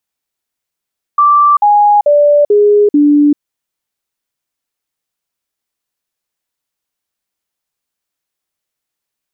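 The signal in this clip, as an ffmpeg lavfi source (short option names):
-f lavfi -i "aevalsrc='0.596*clip(min(mod(t,0.44),0.39-mod(t,0.44))/0.005,0,1)*sin(2*PI*1170*pow(2,-floor(t/0.44)/2)*mod(t,0.44))':d=2.2:s=44100"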